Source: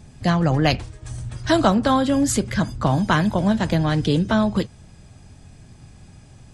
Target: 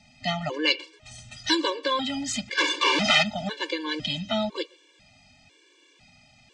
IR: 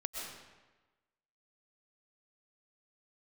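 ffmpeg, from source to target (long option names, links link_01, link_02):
-filter_complex "[0:a]asettb=1/sr,asplit=3[link_01][link_02][link_03];[link_01]atrim=end=1.114[link_04];[link_02]atrim=start=1.11:end=1.55,asetpts=PTS-STARTPTS,afade=type=in:duration=0.004:curve=qsin,afade=type=out:start_time=0.436:duration=0.004:curve=qsin,aemphasis=mode=production:type=50fm[link_05];[link_03]atrim=start=1.546[link_06];[link_04][link_05]acrossfade=duration=0.004:curve1=hsin:curve2=qsin[link_07];[link_07][link_06]acrossfade=duration=0.004:curve1=qsin:curve2=hsin,asplit=2[link_08][link_09];[1:a]atrim=start_sample=2205,afade=type=out:start_time=0.19:duration=0.01,atrim=end_sample=8820,lowpass=4700[link_10];[link_09][link_10]afir=irnorm=-1:irlink=0,volume=-17.5dB[link_11];[link_08][link_11]amix=inputs=2:normalize=0,asplit=3[link_12][link_13][link_14];[link_12]afade=type=out:start_time=2.57:duration=0.02[link_15];[link_13]asplit=2[link_16][link_17];[link_17]highpass=frequency=720:poles=1,volume=33dB,asoftclip=type=tanh:threshold=-8dB[link_18];[link_16][link_18]amix=inputs=2:normalize=0,lowpass=frequency=5000:poles=1,volume=-6dB,afade=type=in:start_time=2.57:duration=0.02,afade=type=out:start_time=3.22:duration=0.02[link_19];[link_14]afade=type=in:start_time=3.22:duration=0.02[link_20];[link_15][link_19][link_20]amix=inputs=3:normalize=0,acrossover=split=250 3100:gain=0.158 1 0.141[link_21][link_22][link_23];[link_21][link_22][link_23]amix=inputs=3:normalize=0,aexciter=amount=5.6:drive=6.8:freq=2100,lowpass=frequency=7100:width=0.5412,lowpass=frequency=7100:width=1.3066,afftfilt=real='re*gt(sin(2*PI*1*pts/sr)*(1-2*mod(floor(b*sr/1024/300),2)),0)':imag='im*gt(sin(2*PI*1*pts/sr)*(1-2*mod(floor(b*sr/1024/300),2)),0)':win_size=1024:overlap=0.75,volume=-4.5dB"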